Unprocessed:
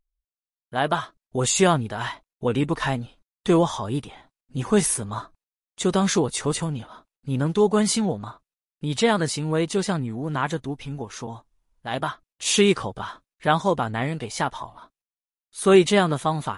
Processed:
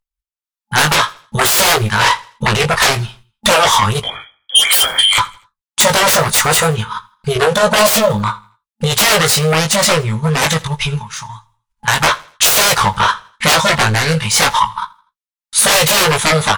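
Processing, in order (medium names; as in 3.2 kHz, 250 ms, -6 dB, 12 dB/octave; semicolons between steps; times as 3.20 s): FFT band-reject 220–850 Hz; 4.02–5.18 s: frequency inversion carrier 3.3 kHz; sine folder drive 20 dB, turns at -8 dBFS; doubling 19 ms -5.5 dB; transient shaper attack +4 dB, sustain -6 dB; gate with hold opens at -31 dBFS; 11.01–11.88 s: compression 4:1, threshold -25 dBFS, peak gain reduction 12.5 dB; resonant low shelf 380 Hz -6.5 dB, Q 1.5; feedback delay 82 ms, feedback 37%, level -22 dB; trim -1 dB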